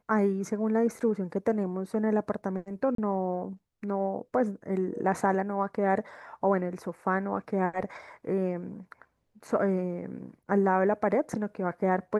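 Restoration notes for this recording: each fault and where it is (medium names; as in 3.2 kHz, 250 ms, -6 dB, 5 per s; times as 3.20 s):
2.95–2.98 s: dropout 33 ms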